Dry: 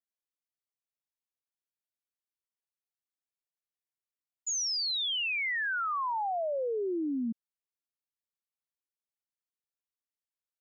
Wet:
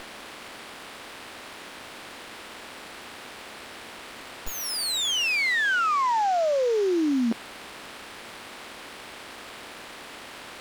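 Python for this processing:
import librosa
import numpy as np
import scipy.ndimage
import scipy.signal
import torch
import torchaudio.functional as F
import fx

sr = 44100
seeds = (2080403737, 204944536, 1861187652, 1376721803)

y = fx.bin_compress(x, sr, power=0.4)
y = fx.running_max(y, sr, window=5)
y = F.gain(torch.from_numpy(y), 7.0).numpy()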